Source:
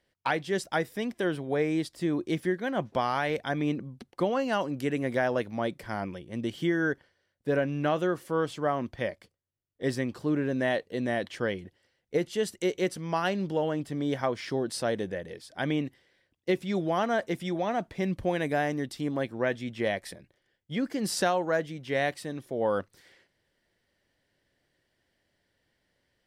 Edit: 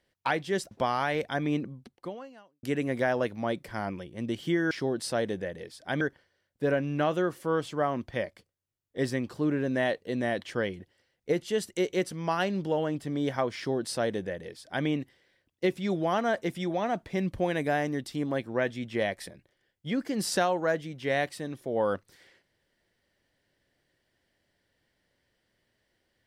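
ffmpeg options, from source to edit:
ffmpeg -i in.wav -filter_complex "[0:a]asplit=5[link_01][link_02][link_03][link_04][link_05];[link_01]atrim=end=0.712[link_06];[link_02]atrim=start=2.858:end=4.78,asetpts=PTS-STARTPTS,afade=type=out:start_time=0.922:duration=1:curve=qua[link_07];[link_03]atrim=start=4.78:end=6.862,asetpts=PTS-STARTPTS,afade=type=in:duration=0.004:curve=hsin[link_08];[link_04]atrim=start=14.408:end=15.712[link_09];[link_05]atrim=start=6.858[link_10];[link_07][link_08]concat=n=2:v=0:a=1[link_11];[link_06][link_11]acrossfade=duration=0.004:curve1=hsin:curve2=hsin[link_12];[link_12][link_09]acrossfade=duration=0.004:curve1=hsin:curve2=hsin[link_13];[link_13][link_10]acrossfade=duration=0.004:curve1=hsin:curve2=hsin" out.wav

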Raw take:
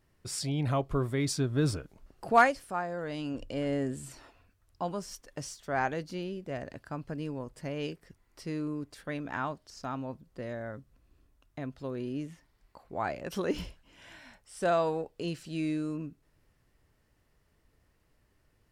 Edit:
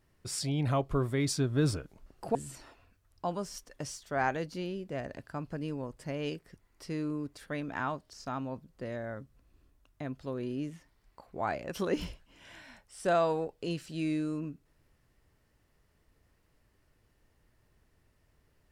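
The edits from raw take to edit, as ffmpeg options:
ffmpeg -i in.wav -filter_complex "[0:a]asplit=2[link_01][link_02];[link_01]atrim=end=2.352[link_03];[link_02]atrim=start=3.918[link_04];[link_03][link_04]acrossfade=duration=0.004:curve1=hsin:curve2=hsin" out.wav

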